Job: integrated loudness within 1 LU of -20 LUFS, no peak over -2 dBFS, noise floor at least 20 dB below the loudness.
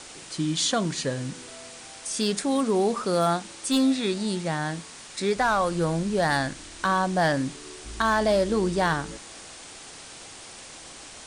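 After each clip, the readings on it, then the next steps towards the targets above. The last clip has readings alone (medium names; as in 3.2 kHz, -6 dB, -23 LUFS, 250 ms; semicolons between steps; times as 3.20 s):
clipped samples 0.3%; clipping level -15.0 dBFS; noise floor -44 dBFS; noise floor target -46 dBFS; loudness -25.5 LUFS; peak level -15.0 dBFS; loudness target -20.0 LUFS
-> clip repair -15 dBFS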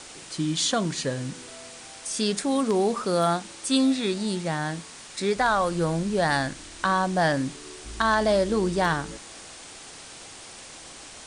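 clipped samples 0.0%; noise floor -44 dBFS; noise floor target -45 dBFS
-> noise reduction 6 dB, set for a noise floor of -44 dBFS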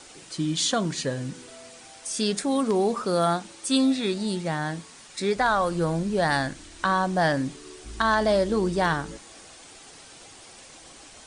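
noise floor -48 dBFS; loudness -25.0 LUFS; peak level -8.0 dBFS; loudness target -20.0 LUFS
-> trim +5 dB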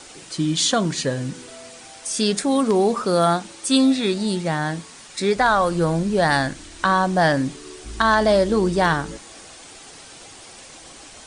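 loudness -20.0 LUFS; peak level -3.0 dBFS; noise floor -43 dBFS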